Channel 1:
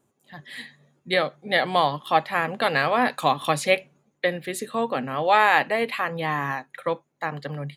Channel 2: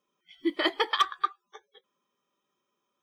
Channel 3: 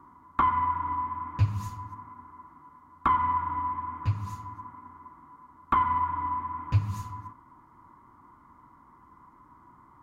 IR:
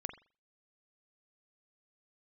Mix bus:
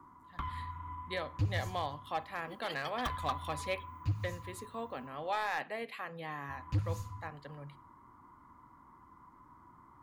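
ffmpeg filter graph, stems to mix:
-filter_complex "[0:a]volume=-18.5dB,asplit=2[a][b];[b]volume=-7dB[c];[1:a]aemphasis=mode=production:type=riaa,adelay=2050,volume=-9.5dB,afade=t=in:st=3.06:d=0.24:silence=0.266073[d];[2:a]acrossover=split=140|3000[e][f][g];[f]acompressor=threshold=-53dB:ratio=2[h];[e][h][g]amix=inputs=3:normalize=0,volume=-5dB,asplit=3[i][j][k];[i]atrim=end=5.49,asetpts=PTS-STARTPTS,afade=t=out:st=5.486:d=0.004:c=hsin[l];[j]atrim=start=5.49:end=6.49,asetpts=PTS-STARTPTS,volume=0[m];[k]atrim=start=6.49,asetpts=PTS-STARTPTS,afade=t=in:d=0.004:c=hsin[n];[l][m][n]concat=n=3:v=0:a=1,asplit=2[o][p];[p]volume=-6.5dB[q];[3:a]atrim=start_sample=2205[r];[c][q]amix=inputs=2:normalize=0[s];[s][r]afir=irnorm=-1:irlink=0[t];[a][d][o][t]amix=inputs=4:normalize=0,asoftclip=type=hard:threshold=-26dB"

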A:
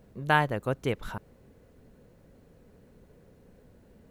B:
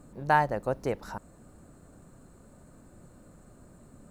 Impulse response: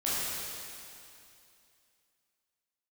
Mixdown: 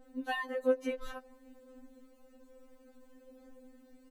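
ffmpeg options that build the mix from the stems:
-filter_complex "[0:a]acompressor=threshold=-31dB:ratio=2.5,adynamicequalizer=threshold=0.00158:dfrequency=4200:dqfactor=0.7:tfrequency=4200:tqfactor=0.7:attack=5:release=100:ratio=0.375:range=2:mode=cutabove:tftype=highshelf,volume=0.5dB[a];[1:a]adelay=12,volume=-15.5dB,asplit=2[b][c];[c]volume=-22dB[d];[2:a]atrim=start_sample=2205[e];[d][e]afir=irnorm=-1:irlink=0[f];[a][b][f]amix=inputs=3:normalize=0,aphaser=in_gain=1:out_gain=1:delay=2.1:decay=0.28:speed=0.58:type=sinusoidal,afftfilt=real='re*3.46*eq(mod(b,12),0)':imag='im*3.46*eq(mod(b,12),0)':win_size=2048:overlap=0.75"

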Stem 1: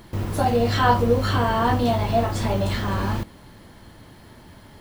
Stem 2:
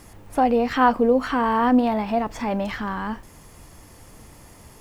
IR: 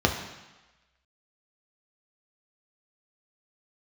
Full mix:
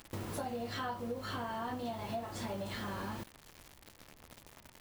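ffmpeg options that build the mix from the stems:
-filter_complex "[0:a]highpass=f=220:p=1,acrusher=bits=6:mix=0:aa=0.000001,volume=-5.5dB[a];[1:a]lowpass=3.1k,volume=-1,volume=-16dB[b];[a][b]amix=inputs=2:normalize=0,acompressor=threshold=-37dB:ratio=6"

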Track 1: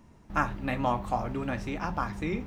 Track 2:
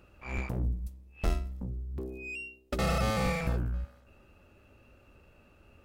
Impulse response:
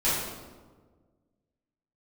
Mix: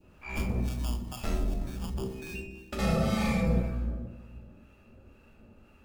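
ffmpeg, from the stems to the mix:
-filter_complex "[0:a]acrusher=samples=22:mix=1:aa=0.000001,acrossover=split=150|3000[a][b][c];[b]acompressor=threshold=-40dB:ratio=2.5[d];[a][d][c]amix=inputs=3:normalize=0,volume=-6.5dB,asplit=3[e][f][g];[f]volume=-23dB[h];[g]volume=-14dB[i];[1:a]equalizer=f=220:w=5:g=10.5,volume=-3.5dB,asplit=2[j][k];[k]volume=-8.5dB[l];[2:a]atrim=start_sample=2205[m];[h][l]amix=inputs=2:normalize=0[n];[n][m]afir=irnorm=-1:irlink=0[o];[i]aecho=0:1:286|572|858|1144|1430:1|0.36|0.13|0.0467|0.0168[p];[e][j][o][p]amix=inputs=4:normalize=0,adynamicequalizer=threshold=0.00501:dfrequency=1400:dqfactor=1.1:tfrequency=1400:tqfactor=1.1:attack=5:release=100:ratio=0.375:range=2.5:mode=cutabove:tftype=bell,acrossover=split=830[q][r];[q]aeval=exprs='val(0)*(1-0.5/2+0.5/2*cos(2*PI*2*n/s))':c=same[s];[r]aeval=exprs='val(0)*(1-0.5/2-0.5/2*cos(2*PI*2*n/s))':c=same[t];[s][t]amix=inputs=2:normalize=0"

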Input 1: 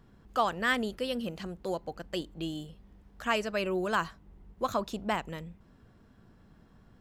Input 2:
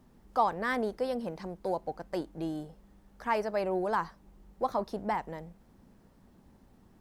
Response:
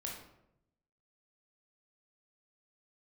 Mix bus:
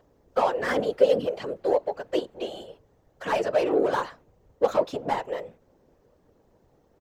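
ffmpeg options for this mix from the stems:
-filter_complex "[0:a]highshelf=f=4.7k:g=-7,asplit=2[a][b];[b]highpass=f=720:p=1,volume=22dB,asoftclip=type=tanh:threshold=-14.5dB[c];[a][c]amix=inputs=2:normalize=0,lowpass=f=7.6k:p=1,volume=-6dB,volume=-4dB[d];[1:a]equalizer=f=200:t=o:w=0.33:g=-11,equalizer=f=6.3k:t=o:w=0.33:g=4,equalizer=f=10k:t=o:w=0.33:g=-10,adelay=8.3,volume=2dB,asplit=2[e][f];[f]apad=whole_len=308835[g];[d][g]sidechaingate=range=-33dB:threshold=-50dB:ratio=16:detection=peak[h];[h][e]amix=inputs=2:normalize=0,afftfilt=real='hypot(re,im)*cos(2*PI*random(0))':imag='hypot(re,im)*sin(2*PI*random(1))':win_size=512:overlap=0.75,equalizer=f=510:t=o:w=0.98:g=12"

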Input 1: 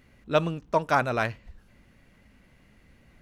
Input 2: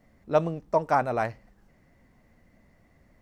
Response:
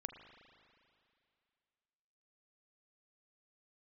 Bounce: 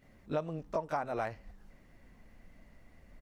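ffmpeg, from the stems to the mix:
-filter_complex "[0:a]acompressor=threshold=-27dB:ratio=6,volume=-9dB[a];[1:a]asubboost=boost=4.5:cutoff=53,adelay=20,volume=-1dB[b];[a][b]amix=inputs=2:normalize=0,acompressor=threshold=-31dB:ratio=6"

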